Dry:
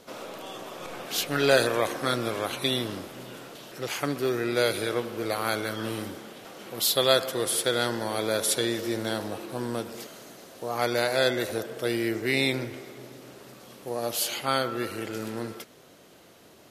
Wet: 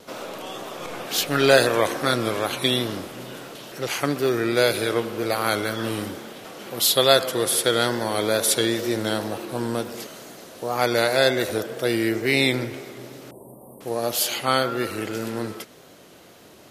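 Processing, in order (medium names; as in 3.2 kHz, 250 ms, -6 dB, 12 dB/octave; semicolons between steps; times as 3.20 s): 13.31–13.81 s: Chebyshev band-stop 1–8.8 kHz, order 5; wow and flutter 52 cents; trim +5 dB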